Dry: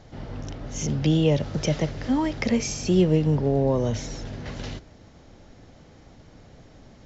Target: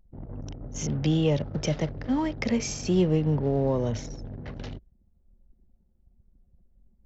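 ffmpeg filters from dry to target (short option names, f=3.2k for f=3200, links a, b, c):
-af "acontrast=50,anlmdn=63.1,volume=-8.5dB"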